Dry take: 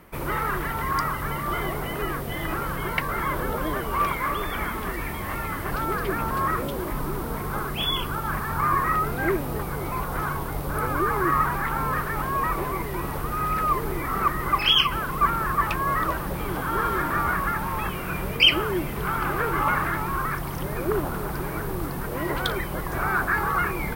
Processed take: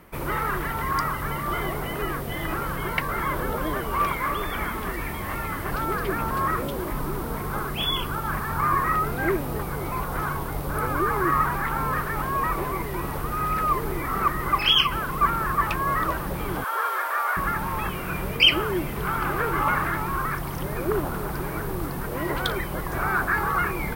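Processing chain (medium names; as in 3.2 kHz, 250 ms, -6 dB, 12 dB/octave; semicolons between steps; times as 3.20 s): 16.64–17.37 s: steep high-pass 490 Hz 36 dB/octave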